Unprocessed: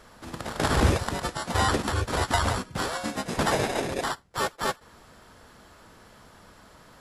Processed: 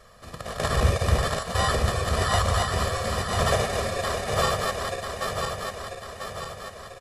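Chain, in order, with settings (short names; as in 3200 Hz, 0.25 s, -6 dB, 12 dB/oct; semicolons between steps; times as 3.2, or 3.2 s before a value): regenerating reverse delay 0.496 s, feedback 70%, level -2 dB; comb 1.7 ms, depth 75%; gain -3 dB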